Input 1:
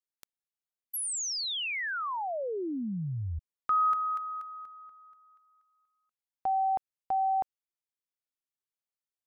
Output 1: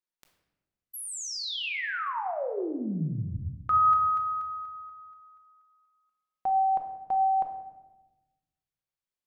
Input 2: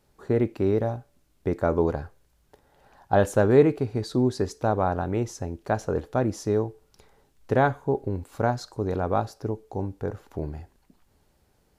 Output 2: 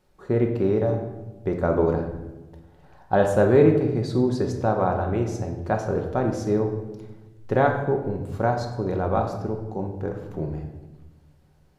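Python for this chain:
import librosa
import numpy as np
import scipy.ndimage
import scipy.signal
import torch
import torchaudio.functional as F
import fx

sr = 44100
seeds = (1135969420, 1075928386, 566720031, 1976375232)

y = fx.high_shelf(x, sr, hz=5700.0, db=-7.0)
y = fx.room_shoebox(y, sr, seeds[0], volume_m3=580.0, walls='mixed', distance_m=1.0)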